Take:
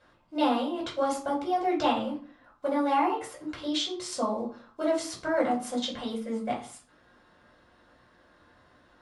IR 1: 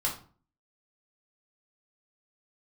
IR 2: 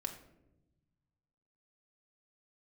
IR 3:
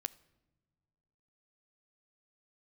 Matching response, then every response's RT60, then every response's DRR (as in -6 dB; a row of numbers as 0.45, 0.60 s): 1; 0.40 s, 0.95 s, not exponential; -4.0, 3.0, 16.5 dB